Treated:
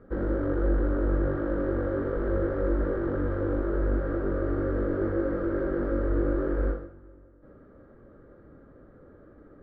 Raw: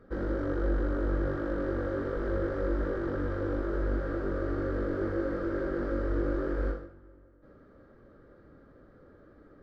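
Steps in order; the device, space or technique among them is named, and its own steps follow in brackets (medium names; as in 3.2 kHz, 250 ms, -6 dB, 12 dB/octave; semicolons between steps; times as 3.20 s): phone in a pocket (low-pass 3.3 kHz 12 dB/octave; treble shelf 2 kHz -9 dB); trim +4 dB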